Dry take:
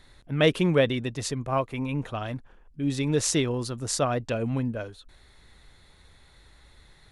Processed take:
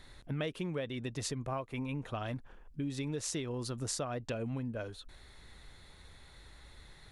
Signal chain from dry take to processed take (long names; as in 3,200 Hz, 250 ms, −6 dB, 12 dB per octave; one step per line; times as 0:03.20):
downward compressor 8 to 1, threshold −34 dBFS, peak gain reduction 18.5 dB